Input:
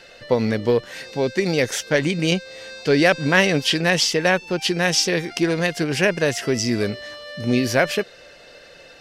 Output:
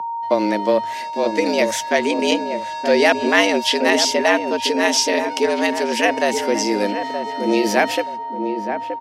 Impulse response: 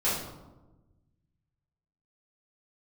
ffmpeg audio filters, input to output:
-filter_complex "[0:a]agate=range=-46dB:threshold=-37dB:ratio=16:detection=peak,aeval=exprs='val(0)+0.0631*sin(2*PI*830*n/s)':c=same,afreqshift=98,asplit=2[a][b];[b]adelay=924,lowpass=f=840:p=1,volume=-5.5dB,asplit=2[c][d];[d]adelay=924,lowpass=f=840:p=1,volume=0.37,asplit=2[e][f];[f]adelay=924,lowpass=f=840:p=1,volume=0.37,asplit=2[g][h];[h]adelay=924,lowpass=f=840:p=1,volume=0.37[i];[a][c][e][g][i]amix=inputs=5:normalize=0,volume=1dB"

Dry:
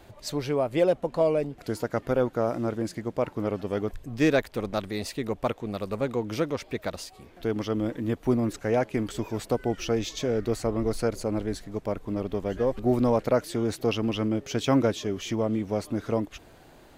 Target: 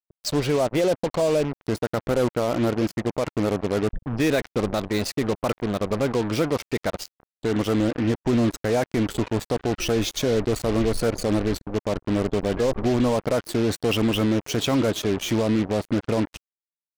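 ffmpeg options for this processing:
-filter_complex "[0:a]afftdn=nr=35:nf=-43,acrossover=split=4300[a][b];[a]alimiter=limit=-21.5dB:level=0:latency=1:release=11[c];[c][b]amix=inputs=2:normalize=0,acrusher=bits=5:mix=0:aa=0.5,volume=7.5dB"

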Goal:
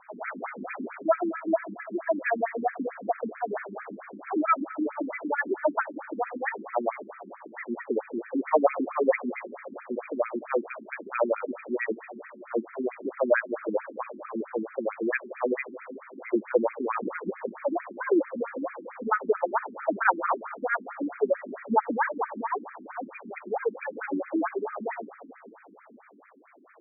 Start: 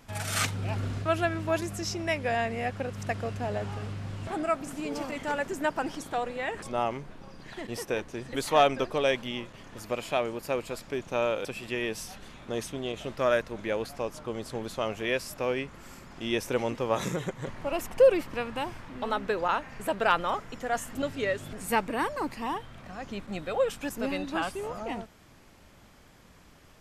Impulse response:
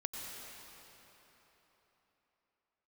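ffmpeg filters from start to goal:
-filter_complex "[0:a]acrusher=bits=5:mode=log:mix=0:aa=0.000001,asplit=2[a][b];[1:a]atrim=start_sample=2205[c];[b][c]afir=irnorm=-1:irlink=0,volume=-10.5dB[d];[a][d]amix=inputs=2:normalize=0,afftfilt=real='re*between(b*sr/1024,250*pow(1800/250,0.5+0.5*sin(2*PI*4.5*pts/sr))/1.41,250*pow(1800/250,0.5+0.5*sin(2*PI*4.5*pts/sr))*1.41)':imag='im*between(b*sr/1024,250*pow(1800/250,0.5+0.5*sin(2*PI*4.5*pts/sr))/1.41,250*pow(1800/250,0.5+0.5*sin(2*PI*4.5*pts/sr))*1.41)':win_size=1024:overlap=0.75,volume=6.5dB"

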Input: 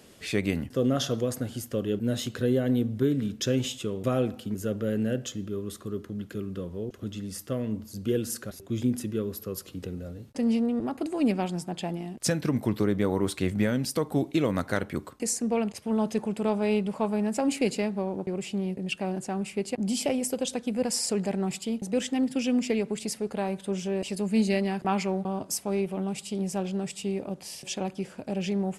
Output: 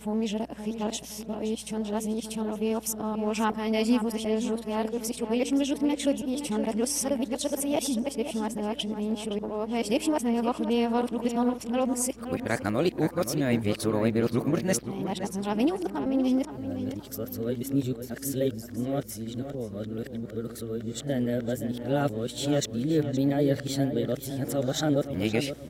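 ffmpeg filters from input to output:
-filter_complex "[0:a]areverse,asetrate=49392,aresample=44100,asplit=2[a][b];[b]adelay=519,lowpass=f=3.6k:p=1,volume=-9.5dB,asplit=2[c][d];[d]adelay=519,lowpass=f=3.6k:p=1,volume=0.36,asplit=2[e][f];[f]adelay=519,lowpass=f=3.6k:p=1,volume=0.36,asplit=2[g][h];[h]adelay=519,lowpass=f=3.6k:p=1,volume=0.36[i];[a][c][e][g][i]amix=inputs=5:normalize=0,aeval=exprs='val(0)+0.002*(sin(2*PI*60*n/s)+sin(2*PI*2*60*n/s)/2+sin(2*PI*3*60*n/s)/3+sin(2*PI*4*60*n/s)/4+sin(2*PI*5*60*n/s)/5)':c=same"

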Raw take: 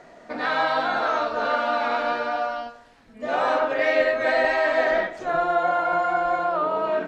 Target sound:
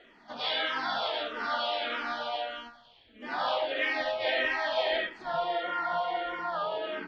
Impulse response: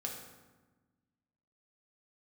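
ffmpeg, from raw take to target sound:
-filter_complex "[0:a]lowpass=f=3.3k:t=q:w=11,asplit=2[a][b];[b]asetrate=58866,aresample=44100,atempo=0.749154,volume=-9dB[c];[a][c]amix=inputs=2:normalize=0,asplit=2[d][e];[e]afreqshift=-1.6[f];[d][f]amix=inputs=2:normalize=1,volume=-7.5dB"

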